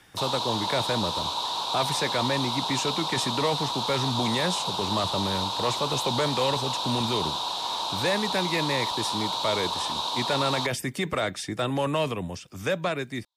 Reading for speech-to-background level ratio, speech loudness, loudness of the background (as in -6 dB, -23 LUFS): -1.0 dB, -29.0 LUFS, -28.0 LUFS